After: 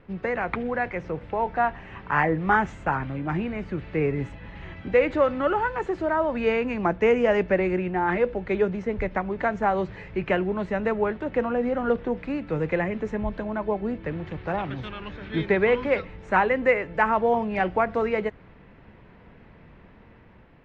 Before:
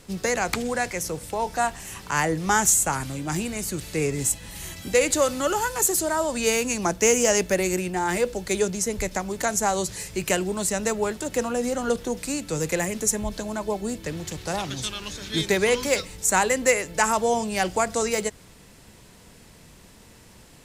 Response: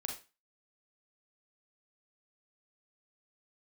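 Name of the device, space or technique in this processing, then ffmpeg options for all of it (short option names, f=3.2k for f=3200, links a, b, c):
action camera in a waterproof case: -af "lowpass=f=2.3k:w=0.5412,lowpass=f=2.3k:w=1.3066,dynaudnorm=f=310:g=5:m=3dB,volume=-2dB" -ar 48000 -c:a aac -b:a 48k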